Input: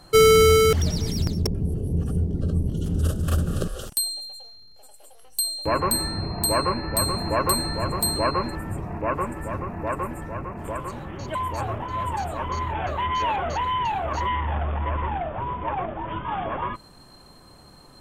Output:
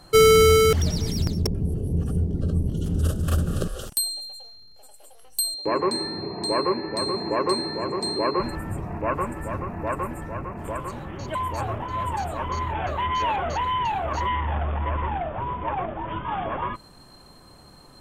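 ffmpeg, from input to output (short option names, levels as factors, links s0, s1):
-filter_complex "[0:a]asettb=1/sr,asplit=3[s0][s1][s2];[s0]atrim=end=5.544[s3];[s1]atrim=start=5.54:end=8.4,asetpts=PTS-STARTPTS,afade=t=in:d=0.004:c=qsin,afade=t=out:st=2.856:d=0.004:c=qsin,highpass=210,equalizer=f=390:t=q:w=4:g=9,equalizer=f=660:t=q:w=4:g=-4,equalizer=f=1400:t=q:w=4:g=-8,equalizer=f=2900:t=q:w=4:g=-8,lowpass=f=6200:w=0.5412,lowpass=f=6200:w=1.3066[s4];[s2]atrim=start=8.396[s5];[s3][s4]acrossfade=d=0.004:c1=hsin:c2=qsin[s6];[s6][s5]acrossfade=d=0.004:c1=qsin:c2=hsin"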